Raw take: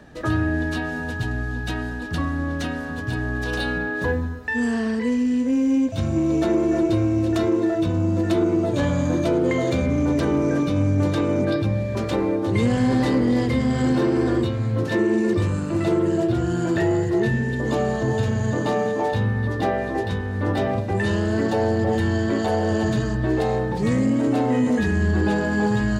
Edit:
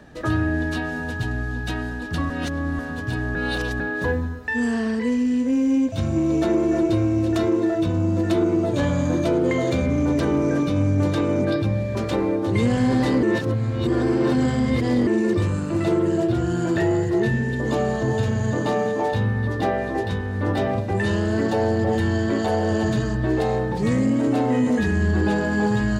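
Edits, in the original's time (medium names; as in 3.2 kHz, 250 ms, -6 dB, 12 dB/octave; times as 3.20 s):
2.30–2.79 s: reverse
3.35–3.80 s: reverse
13.23–15.07 s: reverse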